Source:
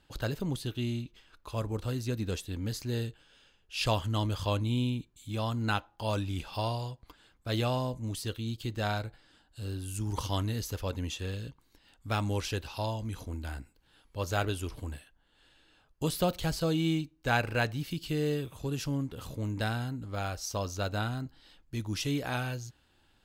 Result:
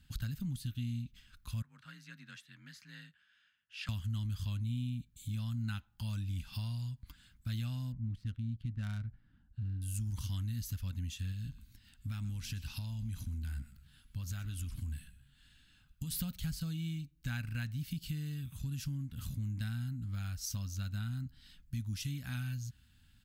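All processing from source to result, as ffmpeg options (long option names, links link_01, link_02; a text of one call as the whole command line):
ffmpeg -i in.wav -filter_complex "[0:a]asettb=1/sr,asplit=3[link_01][link_02][link_03];[link_01]atrim=end=1.624[link_04];[link_02]atrim=start=1.62:end=3.89,asetpts=PTS-STARTPTS,afade=type=in:duration=0.004:curve=qsin,afade=type=out:start_time=2.266:duration=0.004:curve=qsin,bandpass=frequency=1500:width_type=q:width=1.7,afreqshift=39[link_05];[link_03]atrim=start=3.886[link_06];[link_04][link_05]acrossfade=duration=0.004:curve1=hsin:curve2=qsin[link_07];[link_07][link_06]acrossfade=duration=0.004:curve1=qsin:curve2=hsin,asettb=1/sr,asplit=3[link_08][link_09][link_10];[link_08]atrim=end=7.924[link_11];[link_09]atrim=start=7.92:end=9.82,asetpts=PTS-STARTPTS,afade=type=in:duration=0.004:curve=qsin,afade=type=out:start_time=1.896:duration=0.004:curve=qsin,highshelf=frequency=2900:gain=-4.5,adynamicsmooth=sensitivity=7:basefreq=1200[link_12];[link_10]atrim=start=9.816[link_13];[link_11][link_12]acrossfade=duration=0.004:curve1=hsin:curve2=qsin[link_14];[link_14][link_13]acrossfade=duration=0.004:curve1=qsin:curve2=hsin,asettb=1/sr,asplit=3[link_15][link_16][link_17];[link_15]atrim=end=11.324[link_18];[link_16]atrim=start=11.32:end=16.11,asetpts=PTS-STARTPTS,afade=type=in:duration=0.004:curve=qsin,afade=type=out:start_time=4.786:duration=0.004:curve=qsin,acompressor=threshold=-37dB:ratio=2.5:attack=3.2:release=140:knee=1:detection=peak,asplit=4[link_19][link_20][link_21][link_22];[link_20]adelay=123,afreqshift=-72,volume=-16.5dB[link_23];[link_21]adelay=246,afreqshift=-144,volume=-25.4dB[link_24];[link_22]adelay=369,afreqshift=-216,volume=-34.2dB[link_25];[link_19][link_23][link_24][link_25]amix=inputs=4:normalize=0,atrim=end_sample=211239[link_26];[link_17]atrim=start=16.106[link_27];[link_18][link_26]acrossfade=duration=0.004:curve1=hsin:curve2=qsin[link_28];[link_28][link_27]acrossfade=duration=0.004:curve1=qsin:curve2=hsin,equalizer=frequency=73:width=0.31:gain=9.5,acompressor=threshold=-35dB:ratio=3,firequalizer=gain_entry='entry(240,0);entry(370,-25);entry(1500,-1);entry(14000,8)':delay=0.05:min_phase=1,volume=-2dB" out.wav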